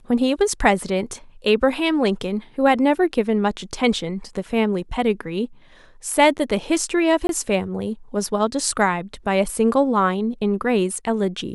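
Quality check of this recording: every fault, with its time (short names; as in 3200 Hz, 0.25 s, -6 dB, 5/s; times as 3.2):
7.27–7.29 gap 22 ms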